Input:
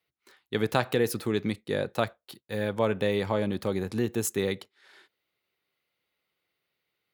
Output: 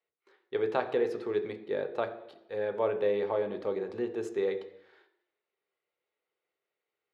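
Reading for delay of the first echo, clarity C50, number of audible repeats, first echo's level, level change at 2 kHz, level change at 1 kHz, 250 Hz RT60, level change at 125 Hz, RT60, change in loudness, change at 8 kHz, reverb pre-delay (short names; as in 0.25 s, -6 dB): none, 12.0 dB, none, none, -7.0 dB, -3.5 dB, 0.80 s, -16.0 dB, 0.85 s, -3.0 dB, under -20 dB, 3 ms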